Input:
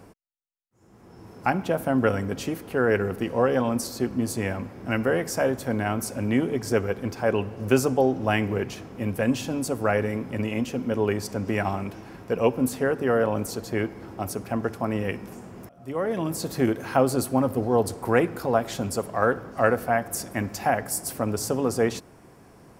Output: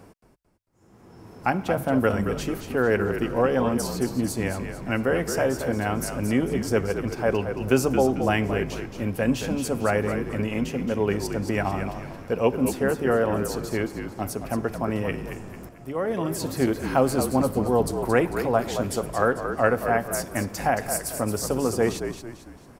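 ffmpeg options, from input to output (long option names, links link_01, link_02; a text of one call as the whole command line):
ffmpeg -i in.wav -filter_complex "[0:a]asplit=5[link_01][link_02][link_03][link_04][link_05];[link_02]adelay=223,afreqshift=-53,volume=-8dB[link_06];[link_03]adelay=446,afreqshift=-106,volume=-16.2dB[link_07];[link_04]adelay=669,afreqshift=-159,volume=-24.4dB[link_08];[link_05]adelay=892,afreqshift=-212,volume=-32.5dB[link_09];[link_01][link_06][link_07][link_08][link_09]amix=inputs=5:normalize=0" out.wav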